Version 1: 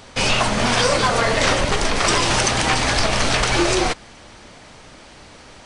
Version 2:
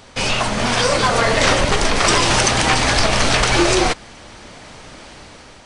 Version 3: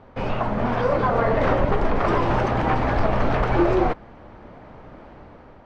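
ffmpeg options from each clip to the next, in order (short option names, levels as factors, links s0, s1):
-af "dynaudnorm=f=390:g=5:m=3.76,volume=0.891"
-af "lowpass=1100,volume=0.794"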